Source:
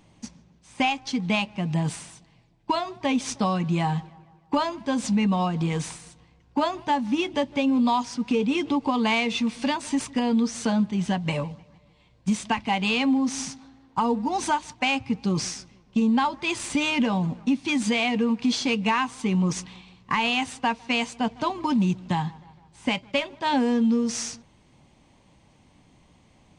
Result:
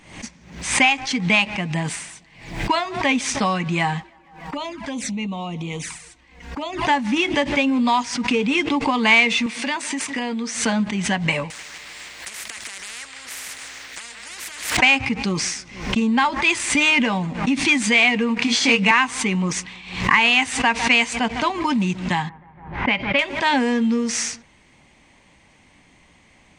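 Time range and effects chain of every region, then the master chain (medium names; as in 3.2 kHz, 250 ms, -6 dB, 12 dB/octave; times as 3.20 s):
4.02–6.85 s: compression 4:1, threshold -26 dBFS + touch-sensitive flanger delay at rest 4.8 ms, full sweep at -26 dBFS
9.46–10.56 s: high-pass 190 Hz + compression 4:1, threshold -25 dBFS
11.50–14.77 s: compression 10:1, threshold -36 dBFS + tilt EQ +2.5 dB/octave + spectrum-flattening compressor 10:1
18.38–18.91 s: high-pass 89 Hz + doubling 26 ms -3 dB
22.29–23.19 s: level-controlled noise filter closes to 1.3 kHz, open at -23.5 dBFS + distance through air 240 m
whole clip: ten-band graphic EQ 125 Hz -5 dB, 2 kHz +11 dB, 8 kHz +5 dB; swell ahead of each attack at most 90 dB/s; trim +2.5 dB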